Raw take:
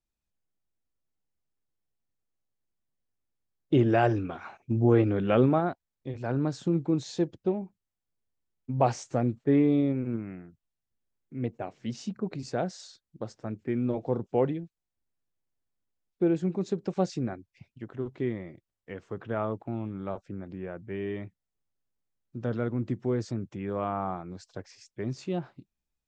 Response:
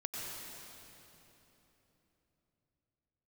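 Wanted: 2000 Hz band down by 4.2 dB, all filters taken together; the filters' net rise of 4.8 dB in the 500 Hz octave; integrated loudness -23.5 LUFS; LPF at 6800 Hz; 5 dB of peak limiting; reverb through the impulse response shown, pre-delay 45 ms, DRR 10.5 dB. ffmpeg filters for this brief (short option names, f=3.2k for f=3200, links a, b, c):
-filter_complex "[0:a]lowpass=6.8k,equalizer=f=500:t=o:g=6.5,equalizer=f=2k:t=o:g=-6.5,alimiter=limit=-12.5dB:level=0:latency=1,asplit=2[a][b];[1:a]atrim=start_sample=2205,adelay=45[c];[b][c]afir=irnorm=-1:irlink=0,volume=-12dB[d];[a][d]amix=inputs=2:normalize=0,volume=4dB"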